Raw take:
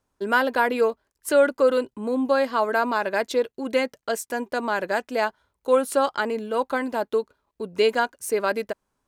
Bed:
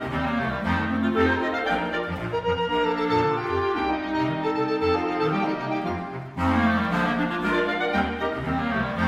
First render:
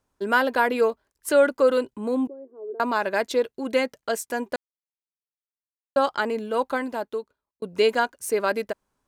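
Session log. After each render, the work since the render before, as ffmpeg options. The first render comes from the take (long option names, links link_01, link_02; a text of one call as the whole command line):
ffmpeg -i in.wav -filter_complex "[0:a]asettb=1/sr,asplit=3[link_01][link_02][link_03];[link_01]atrim=end=2.274[link_04];[link_02]atrim=start=2.27:end=2.8,asetpts=PTS-STARTPTS,afade=type=in:duration=0.004:curve=qsin,afade=type=out:start_time=0.526:duration=0.004:curve=qsin,asuperpass=centerf=370:order=4:qfactor=4[link_05];[link_03]atrim=start=2.796[link_06];[link_04][link_05]acrossfade=duration=0.004:curve1=hsin:curve2=qsin[link_07];[link_07][link_06]acrossfade=duration=0.004:curve1=qsin:curve2=hsin,asplit=4[link_08][link_09][link_10][link_11];[link_08]atrim=end=4.56,asetpts=PTS-STARTPTS,afade=type=out:start_time=4.556:duration=0.004:curve=hsin[link_12];[link_09]atrim=start=4.56:end=5.96,asetpts=PTS-STARTPTS,volume=0[link_13];[link_10]atrim=start=5.96:end=7.62,asetpts=PTS-STARTPTS,afade=type=in:duration=0.004:curve=hsin,afade=type=out:start_time=0.7:duration=0.96[link_14];[link_11]atrim=start=7.62,asetpts=PTS-STARTPTS,afade=type=in:duration=0.004:curve=hsin[link_15];[link_12][link_13][link_14][link_15]concat=n=4:v=0:a=1" out.wav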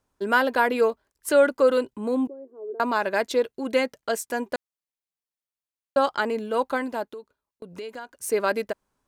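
ffmpeg -i in.wav -filter_complex "[0:a]asettb=1/sr,asplit=3[link_01][link_02][link_03];[link_01]atrim=end=7.134[link_04];[link_02]atrim=start=7.13:end=8.18,asetpts=PTS-STARTPTS,afade=type=in:duration=0.004:curve=qsin,afade=type=out:start_time=1.046:duration=0.004:curve=qsin,acompressor=threshold=-36dB:ratio=4:attack=3.2:release=140:knee=1:detection=peak[link_05];[link_03]atrim=start=8.176[link_06];[link_04][link_05]acrossfade=duration=0.004:curve1=hsin:curve2=qsin[link_07];[link_07][link_06]acrossfade=duration=0.004:curve1=qsin:curve2=hsin" out.wav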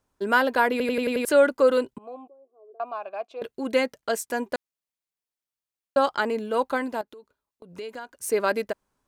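ffmpeg -i in.wav -filter_complex "[0:a]asettb=1/sr,asplit=3[link_01][link_02][link_03];[link_01]atrim=end=1.984[link_04];[link_02]atrim=start=1.98:end=3.42,asetpts=PTS-STARTPTS,afade=type=in:duration=0.004:curve=qsin,afade=type=out:start_time=1.436:duration=0.004:curve=qsin,asplit=3[link_05][link_06][link_07];[link_05]bandpass=frequency=730:width_type=q:width=8,volume=0dB[link_08];[link_06]bandpass=frequency=1090:width_type=q:width=8,volume=-6dB[link_09];[link_07]bandpass=frequency=2440:width_type=q:width=8,volume=-9dB[link_10];[link_08][link_09][link_10]amix=inputs=3:normalize=0[link_11];[link_03]atrim=start=3.416[link_12];[link_04][link_11]acrossfade=duration=0.004:curve1=hsin:curve2=qsin[link_13];[link_13][link_12]acrossfade=duration=0.004:curve1=qsin:curve2=hsin,asettb=1/sr,asplit=3[link_14][link_15][link_16];[link_14]atrim=end=7.014[link_17];[link_15]atrim=start=7.01:end=7.79,asetpts=PTS-STARTPTS,afade=type=in:duration=0.004:curve=qsin,afade=type=out:start_time=0.776:duration=0.004:curve=qsin,acompressor=threshold=-44dB:ratio=3:attack=3.2:release=140:knee=1:detection=peak[link_18];[link_16]atrim=start=7.786[link_19];[link_17][link_18]acrossfade=duration=0.004:curve1=hsin:curve2=qsin[link_20];[link_20][link_19]acrossfade=duration=0.004:curve1=qsin:curve2=hsin,asplit=7[link_21][link_22][link_23][link_24][link_25][link_26][link_27];[link_21]atrim=end=0.802[link_28];[link_22]atrim=start=0.708:end=0.802[link_29];[link_23]atrim=start=0.708:end=0.802[link_30];[link_24]atrim=start=0.708:end=0.802[link_31];[link_25]atrim=start=0.708:end=0.802[link_32];[link_26]atrim=start=0.708:end=0.802[link_33];[link_27]atrim=start=1.248[link_34];[link_28][link_29]acrossfade=duration=0.004:curve1=hsin:curve2=hsin[link_35];[link_35][link_30]acrossfade=duration=0.004:curve1=hsin:curve2=hsin[link_36];[link_36][link_31]acrossfade=duration=0.004:curve1=hsin:curve2=hsin[link_37];[link_37][link_32]acrossfade=duration=0.004:curve1=hsin:curve2=hsin[link_38];[link_38][link_33]acrossfade=duration=0.004:curve1=hsin:curve2=hsin[link_39];[link_39][link_34]acrossfade=duration=0.004:curve1=hsin:curve2=hsin" out.wav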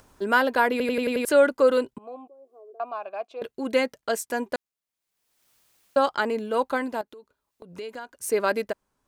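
ffmpeg -i in.wav -af "acompressor=mode=upward:threshold=-42dB:ratio=2.5" out.wav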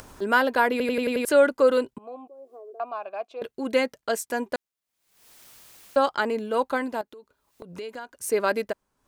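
ffmpeg -i in.wav -af "acompressor=mode=upward:threshold=-37dB:ratio=2.5" out.wav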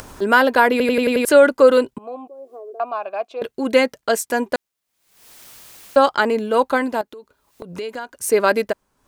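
ffmpeg -i in.wav -af "volume=7.5dB,alimiter=limit=-2dB:level=0:latency=1" out.wav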